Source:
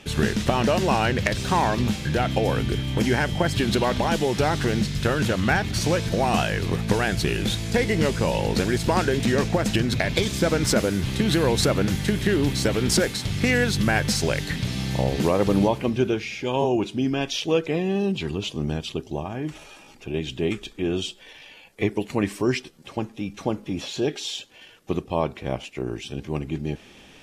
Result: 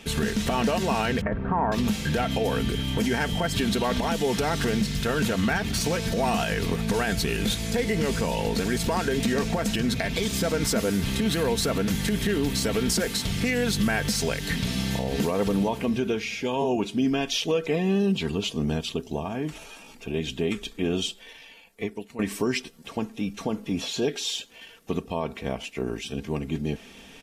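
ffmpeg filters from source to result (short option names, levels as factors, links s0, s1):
-filter_complex "[0:a]asettb=1/sr,asplit=3[s0][s1][s2];[s0]atrim=end=1.214[s3];[s1]atrim=start=1.21:end=1.72,asetpts=PTS-STARTPTS,afade=t=in:d=0.004:c=qsin,afade=t=out:st=0.506:d=0.004:c=qsin,lowpass=f=1500:w=0.5412,lowpass=f=1500:w=1.3066[s4];[s2]atrim=start=1.716[s5];[s3][s4]acrossfade=d=0.004:c1=hsin:c2=qsin[s6];[s6][s5]acrossfade=d=0.004:c1=qsin:c2=hsin,asplit=2[s7][s8];[s7]atrim=end=22.19,asetpts=PTS-STARTPTS,afade=t=out:st=21.03:d=1.16:silence=0.141254[s9];[s8]atrim=start=22.19,asetpts=PTS-STARTPTS,afade=t=in:d=0.004:c=hsin:silence=0.141254[s10];[s9][s10]concat=n=2:v=0:a=1,highshelf=f=12000:g=9.5,aecho=1:1:4.4:0.46,alimiter=limit=0.168:level=0:latency=1:release=86"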